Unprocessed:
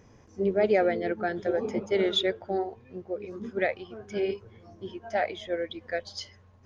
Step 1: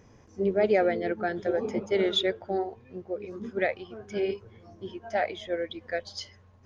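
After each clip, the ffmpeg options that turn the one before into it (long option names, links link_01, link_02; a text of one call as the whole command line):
ffmpeg -i in.wav -af anull out.wav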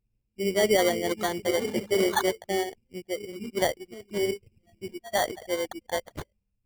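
ffmpeg -i in.wav -af "dynaudnorm=framelen=290:gausssize=3:maxgain=8dB,anlmdn=25.1,acrusher=samples=17:mix=1:aa=0.000001,volume=-6.5dB" out.wav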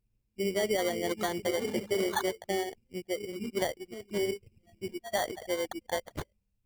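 ffmpeg -i in.wav -af "acompressor=threshold=-28dB:ratio=3" out.wav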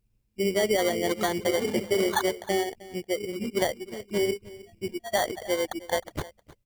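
ffmpeg -i in.wav -af "aecho=1:1:311:0.112,volume=5dB" out.wav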